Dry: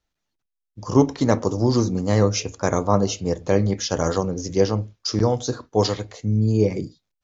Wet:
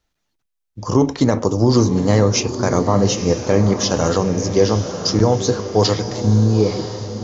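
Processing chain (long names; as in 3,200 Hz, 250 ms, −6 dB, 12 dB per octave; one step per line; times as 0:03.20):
fade-out on the ending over 0.94 s
brickwall limiter −9.5 dBFS, peak gain reduction 7.5 dB
feedback delay with all-pass diffusion 910 ms, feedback 50%, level −9 dB
level +6 dB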